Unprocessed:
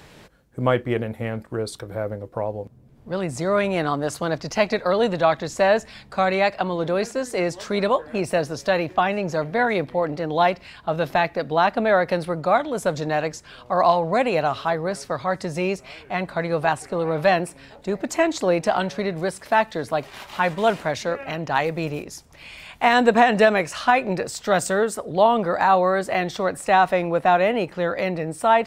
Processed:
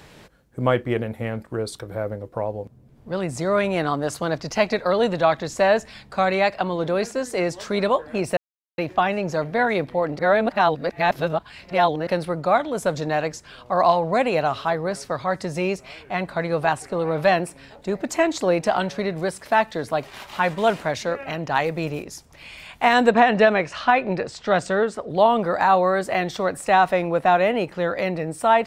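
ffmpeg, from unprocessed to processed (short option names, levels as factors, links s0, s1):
-filter_complex "[0:a]asettb=1/sr,asplit=3[s0][s1][s2];[s0]atrim=end=23.114[s3];[s1]atrim=start=23.11:end=25.1,asetpts=PTS-STARTPTS,afade=t=in:d=0.004:c=qsin,afade=t=out:st=1.986:d=0.004:c=qsin,lowpass=4400[s4];[s2]atrim=start=25.096[s5];[s3][s4]acrossfade=d=0.004:c1=hsin:c2=qsin[s6];[s6][s5]acrossfade=d=0.004:c1=qsin:c2=hsin,asplit=5[s7][s8][s9][s10][s11];[s7]atrim=end=8.37,asetpts=PTS-STARTPTS,afade=t=out:st=8.366:d=0.004:c=hsin[s12];[s8]atrim=start=8.37:end=8.78,asetpts=PTS-STARTPTS,volume=0[s13];[s9]atrim=start=8.78:end=10.192,asetpts=PTS-STARTPTS,afade=t=in:d=0.004:c=hsin[s14];[s10]atrim=start=10.188:end=12.072,asetpts=PTS-STARTPTS,areverse[s15];[s11]atrim=start=12.068[s16];[s12][s13][s14]concat=n=3:v=0:a=1[s17];[s17][s15]acrossfade=d=0.004:c1=hsin:c2=hsin[s18];[s18][s16]acrossfade=d=0.004:c1=hsin:c2=hsin"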